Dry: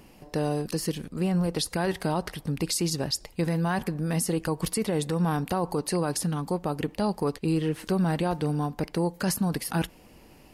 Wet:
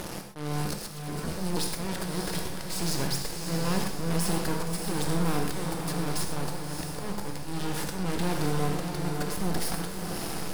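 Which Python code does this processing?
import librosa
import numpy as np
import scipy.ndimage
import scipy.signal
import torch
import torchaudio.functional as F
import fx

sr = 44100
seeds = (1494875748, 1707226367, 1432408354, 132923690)

p1 = fx.bin_compress(x, sr, power=0.6)
p2 = fx.auto_swell(p1, sr, attack_ms=316.0)
p3 = fx.fuzz(p2, sr, gain_db=39.0, gate_db=-40.0)
p4 = p2 + F.gain(torch.from_numpy(p3), -11.0).numpy()
p5 = fx.dispersion(p4, sr, late='lows', ms=119.0, hz=1200.0, at=(0.93, 1.57))
p6 = np.maximum(p5, 0.0)
p7 = p6 + fx.echo_diffused(p6, sr, ms=619, feedback_pct=40, wet_db=-5.0, dry=0)
p8 = fx.rev_gated(p7, sr, seeds[0], gate_ms=150, shape='flat', drr_db=4.0)
y = F.gain(torch.from_numpy(p8), -7.0).numpy()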